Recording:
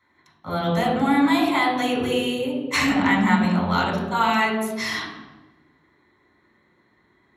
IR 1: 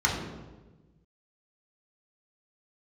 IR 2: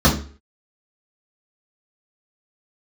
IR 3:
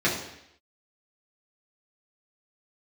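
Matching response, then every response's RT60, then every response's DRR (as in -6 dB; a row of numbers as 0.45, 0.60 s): 1; 1.2, 0.40, 0.75 s; -3.5, -6.5, -7.5 dB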